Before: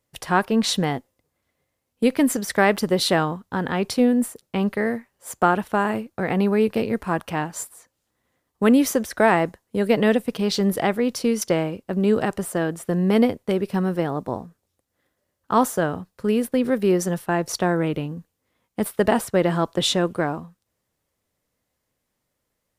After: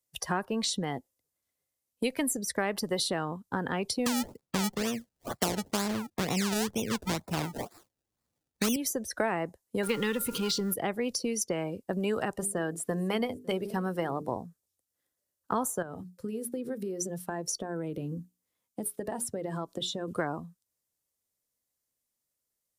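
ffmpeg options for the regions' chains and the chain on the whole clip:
-filter_complex "[0:a]asettb=1/sr,asplit=3[s0][s1][s2];[s0]atrim=end=4.064[s3];[s1]atrim=start=4.06:end=8.76,asetpts=PTS-STARTPTS,afade=t=in:d=0.004:c=qsin,afade=t=out:st=4.696:d=0.004:c=qsin,bass=f=250:g=9,treble=f=4000:g=2,acrusher=samples=28:mix=1:aa=0.000001:lfo=1:lforange=28:lforate=2.1[s4];[s2]atrim=start=8.756[s5];[s3][s4]acrossfade=d=0.004:c1=hsin:c2=qsin[s6];[s6][s5]acrossfade=d=0.004:c1=qsin:c2=hsin,asettb=1/sr,asplit=3[s7][s8][s9];[s7]atrim=end=9.834[s10];[s8]atrim=start=9.83:end=10.74,asetpts=PTS-STARTPTS,afade=t=in:d=0.004:c=qsin,afade=t=out:st=0.906:d=0.004:c=qsin,aeval=exprs='val(0)+0.5*0.0562*sgn(val(0))':c=same,asuperstop=centerf=670:order=4:qfactor=2.3,aeval=exprs='val(0)+0.0112*sin(2*PI*1400*n/s)':c=same[s11];[s9]atrim=start=10.736[s12];[s10][s11]acrossfade=d=0.004:c1=hsin:c2=qsin[s13];[s13][s12]acrossfade=d=0.004:c1=qsin:c2=hsin,asettb=1/sr,asplit=3[s14][s15][s16];[s14]atrim=end=12.384[s17];[s15]atrim=start=12.38:end=14.32,asetpts=PTS-STARTPTS,afade=t=in:d=0.004:c=qsin,afade=t=out:st=1.936:d=0.004:c=qsin,bandreject=f=50:t=h:w=6,bandreject=f=100:t=h:w=6,bandreject=f=150:t=h:w=6,bandreject=f=200:t=h:w=6,bandreject=f=250:t=h:w=6,bandreject=f=300:t=h:w=6,bandreject=f=350:t=h:w=6,bandreject=f=400:t=h:w=6,bandreject=f=450:t=h:w=6,aecho=1:1:553:0.0668,atrim=end_sample=85554[s18];[s16]atrim=start=14.316[s19];[s17][s18]acrossfade=d=0.004:c1=hsin:c2=qsin[s20];[s20][s19]acrossfade=d=0.004:c1=qsin:c2=hsin,asettb=1/sr,asplit=3[s21][s22][s23];[s21]atrim=end=15.824[s24];[s22]atrim=start=15.82:end=20.08,asetpts=PTS-STARTPTS,afade=t=in:d=0.004:c=qsin,afade=t=out:st=4.256:d=0.004:c=qsin,acompressor=threshold=0.0398:ratio=10:attack=3.2:release=140:knee=1:detection=peak,bandreject=f=60:t=h:w=6,bandreject=f=120:t=h:w=6,bandreject=f=180:t=h:w=6,bandreject=f=240:t=h:w=6,bandreject=f=300:t=h:w=6,bandreject=f=360:t=h:w=6,bandreject=f=420:t=h:w=6[s25];[s23]atrim=start=20.076[s26];[s24][s25]acrossfade=d=0.004:c1=hsin:c2=qsin[s27];[s27][s26]acrossfade=d=0.004:c1=qsin:c2=hsin,afftdn=nr=16:nf=-34,bass=f=250:g=-2,treble=f=4000:g=14,acrossover=split=99|680[s28][s29][s30];[s28]acompressor=threshold=0.002:ratio=4[s31];[s29]acompressor=threshold=0.0251:ratio=4[s32];[s30]acompressor=threshold=0.0224:ratio=4[s33];[s31][s32][s33]amix=inputs=3:normalize=0"

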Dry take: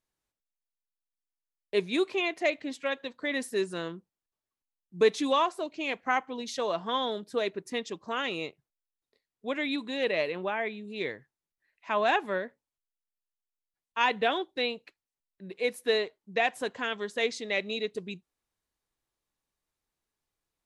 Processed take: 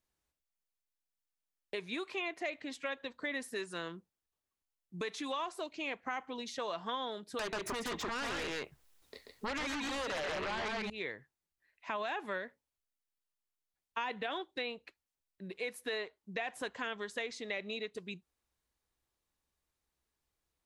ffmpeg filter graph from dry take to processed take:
-filter_complex "[0:a]asettb=1/sr,asplit=3[s0][s1][s2];[s0]atrim=end=7.394[s3];[s1]atrim=start=7.39:end=10.9,asetpts=PTS-STARTPTS,afade=t=in:d=0.004:c=qsin,afade=t=out:st=3.506:d=0.004:c=qsin,aecho=1:1:136:0.596,atrim=end_sample=154791,acompressor=threshold=0.0112:ratio=10:attack=3.2:release=140:knee=1:detection=peak,aeval=exprs='0.0562*sin(PI/2*7.08*val(0)/0.0562)':c=same[s4];[s2]atrim=start=10.896[s5];[s3][s4]acrossfade=d=0.004:c1=hsin:c2=qsin[s6];[s6][s5]acrossfade=d=0.004:c1=qsin:c2=hsin,equalizer=f=64:t=o:w=0.32:g=12,alimiter=limit=0.1:level=0:latency=1:release=44,acrossover=split=900|2100[s7][s8][s9];[s7]acompressor=threshold=0.00794:ratio=4[s10];[s8]acompressor=threshold=0.01:ratio=4[s11];[s9]acompressor=threshold=0.00501:ratio=4[s12];[s10][s11][s12]amix=inputs=3:normalize=0"

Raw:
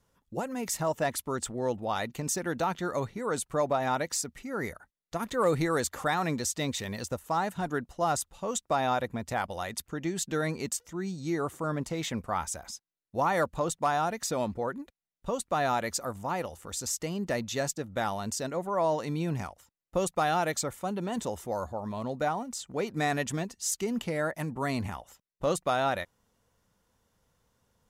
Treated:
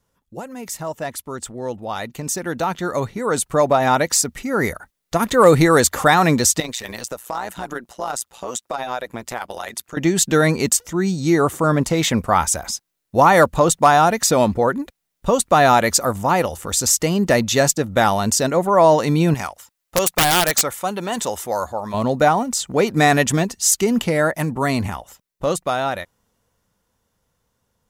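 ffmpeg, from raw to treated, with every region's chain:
-filter_complex "[0:a]asettb=1/sr,asplit=3[s0][s1][s2];[s0]atrim=end=6.604[s3];[s1]atrim=start=6.6:end=9.97,asetpts=PTS-STARTPTS,afade=t=in:d=0.004:c=qsin,afade=t=out:st=3.366:d=0.004:c=qsin,highpass=f=480:p=1,acompressor=threshold=0.0112:ratio=2:attack=3.2:release=140:knee=1:detection=peak,tremolo=f=120:d=0.788[s4];[s2]atrim=start=9.966[s5];[s3][s4]acrossfade=d=0.004:c1=hsin:c2=qsin[s6];[s6][s5]acrossfade=d=0.004:c1=qsin:c2=hsin,asettb=1/sr,asplit=3[s7][s8][s9];[s7]atrim=end=19.344[s10];[s8]atrim=start=19.34:end=21.94,asetpts=PTS-STARTPTS,afade=t=in:d=0.004:c=qsin,afade=t=out:st=2.596:d=0.004:c=qsin,lowshelf=f=470:g=-12,aeval=exprs='(mod(14.1*val(0)+1,2)-1)/14.1':c=same[s11];[s9]atrim=start=21.936[s12];[s10][s11]acrossfade=d=0.004:c1=hsin:c2=qsin[s13];[s13][s12]acrossfade=d=0.004:c1=qsin:c2=hsin,highshelf=f=10000:g=4,dynaudnorm=f=210:g=31:m=5.62,volume=1.12"

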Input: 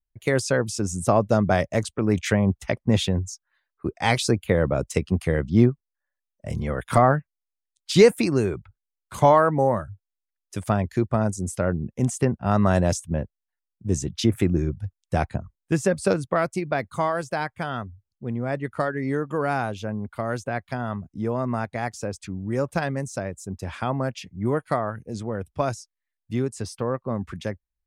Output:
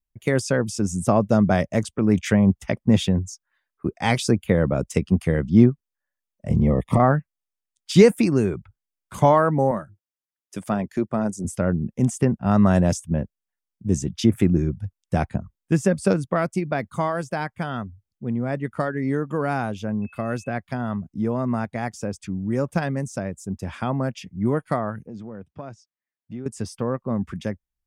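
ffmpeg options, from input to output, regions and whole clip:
-filter_complex "[0:a]asettb=1/sr,asplit=3[s0][s1][s2];[s0]atrim=end=6.494[s3];[s1]atrim=start=6.49:end=7,asetpts=PTS-STARTPTS,afade=t=in:d=0.004:c=qsin,afade=t=out:st=0.506:d=0.004:c=qsin,tiltshelf=f=1500:g=7.5,acompressor=threshold=0.2:ratio=6:attack=3.2:release=140:knee=1:detection=peak,asuperstop=centerf=1500:order=8:qfactor=2.8[s4];[s2]atrim=start=6.996[s5];[s3][s4]acrossfade=d=0.004:c1=hsin:c2=qsin[s6];[s6][s5]acrossfade=d=0.004:c1=qsin:c2=hsin,asettb=1/sr,asplit=3[s7][s8][s9];[s7]atrim=end=9.714[s10];[s8]atrim=start=9.71:end=11.45,asetpts=PTS-STARTPTS,afade=t=in:d=0.004:c=qsin,afade=t=out:st=1.736:d=0.004:c=qsin,highpass=190,tremolo=f=230:d=0.261[s11];[s9]atrim=start=11.446[s12];[s10][s11]acrossfade=d=0.004:c1=hsin:c2=qsin[s13];[s13][s12]acrossfade=d=0.004:c1=qsin:c2=hsin,asettb=1/sr,asplit=3[s14][s15][s16];[s14]atrim=end=20.024[s17];[s15]atrim=start=20.02:end=20.55,asetpts=PTS-STARTPTS,afade=t=in:d=0.004:c=qsin,afade=t=out:st=0.526:d=0.004:c=qsin,bandreject=f=930:w=8.9,aeval=exprs='val(0)+0.00355*sin(2*PI*2600*n/s)':c=same[s18];[s16]atrim=start=20.546[s19];[s17][s18]acrossfade=d=0.004:c1=hsin:c2=qsin[s20];[s20][s19]acrossfade=d=0.004:c1=qsin:c2=hsin,asettb=1/sr,asplit=3[s21][s22][s23];[s21]atrim=end=25.074[s24];[s22]atrim=start=25.07:end=26.46,asetpts=PTS-STARTPTS,afade=t=in:d=0.004:c=qsin,afade=t=out:st=1.386:d=0.004:c=qsin,highshelf=f=3800:g=-11.5,acompressor=threshold=0.0141:ratio=2.5:attack=3.2:release=140:knee=1:detection=peak,highpass=110,lowpass=5700[s25];[s23]atrim=start=26.456[s26];[s24][s25]acrossfade=d=0.004:c1=hsin:c2=qsin[s27];[s27][s26]acrossfade=d=0.004:c1=qsin:c2=hsin,equalizer=f=200:t=o:w=1.1:g=6.5,bandreject=f=4100:w=9.9,volume=0.891"

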